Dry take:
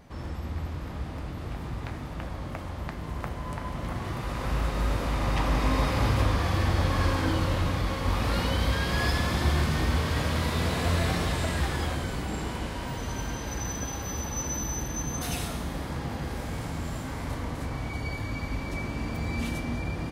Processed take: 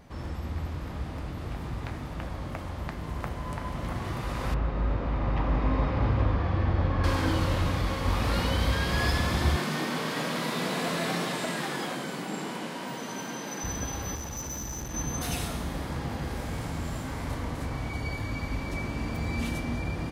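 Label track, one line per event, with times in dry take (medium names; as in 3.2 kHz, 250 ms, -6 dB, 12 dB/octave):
4.540000	7.040000	tape spacing loss at 10 kHz 33 dB
9.560000	13.640000	steep high-pass 160 Hz
14.150000	14.940000	valve stage drive 31 dB, bias 0.5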